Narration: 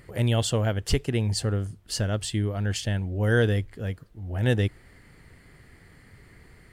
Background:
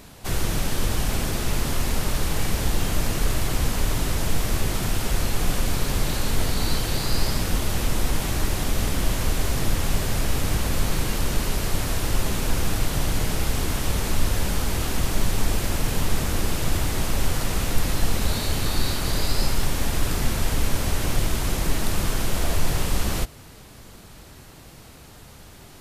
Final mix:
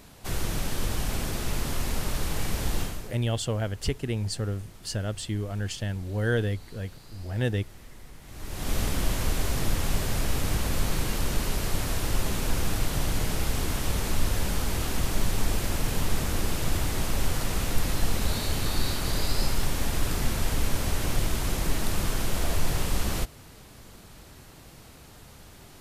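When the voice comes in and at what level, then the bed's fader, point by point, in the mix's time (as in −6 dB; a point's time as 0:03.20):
2.95 s, −4.0 dB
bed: 0:02.81 −5 dB
0:03.20 −24.5 dB
0:08.21 −24.5 dB
0:08.72 −3.5 dB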